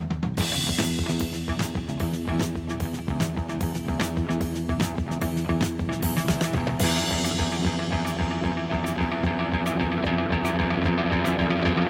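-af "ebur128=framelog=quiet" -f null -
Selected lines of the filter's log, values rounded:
Integrated loudness:
  I:         -25.8 LUFS
  Threshold: -35.8 LUFS
Loudness range:
  LRA:         2.9 LU
  Threshold: -46.1 LUFS
  LRA low:   -27.8 LUFS
  LRA high:  -24.9 LUFS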